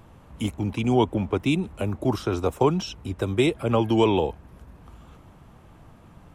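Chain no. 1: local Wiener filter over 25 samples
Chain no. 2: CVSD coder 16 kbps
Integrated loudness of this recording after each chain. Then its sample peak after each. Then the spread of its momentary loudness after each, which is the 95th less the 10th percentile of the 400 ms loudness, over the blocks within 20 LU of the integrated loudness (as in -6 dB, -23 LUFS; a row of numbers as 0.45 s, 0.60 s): -25.0 LUFS, -25.5 LUFS; -8.0 dBFS, -9.0 dBFS; 10 LU, 9 LU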